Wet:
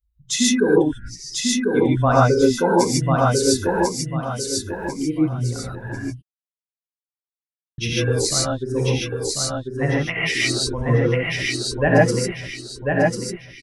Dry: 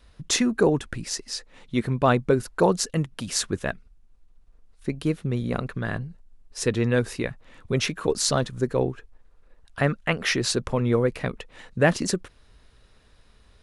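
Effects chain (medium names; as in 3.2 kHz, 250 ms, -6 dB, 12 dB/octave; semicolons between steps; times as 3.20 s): expander on every frequency bin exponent 2; 0.85–1.27 s: treble shelf 7.4 kHz -11 dB; 3.58–4.90 s: small samples zeroed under -55 dBFS; feedback delay 1045 ms, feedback 33%, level -3 dB; 6.06–7.78 s: mute; gated-style reverb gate 170 ms rising, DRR -5.5 dB; trim +2 dB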